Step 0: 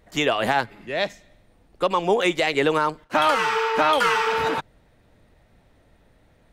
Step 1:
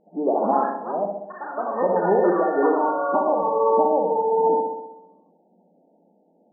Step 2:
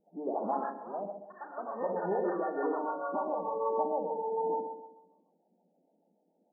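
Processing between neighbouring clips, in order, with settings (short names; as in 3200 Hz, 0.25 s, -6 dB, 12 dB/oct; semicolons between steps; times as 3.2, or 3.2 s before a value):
flutter echo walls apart 11.1 m, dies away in 0.96 s; FFT band-pass 170–920 Hz; echoes that change speed 0.129 s, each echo +4 st, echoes 3, each echo -6 dB
harmonic tremolo 6.7 Hz, depth 70%, crossover 480 Hz; gain -9 dB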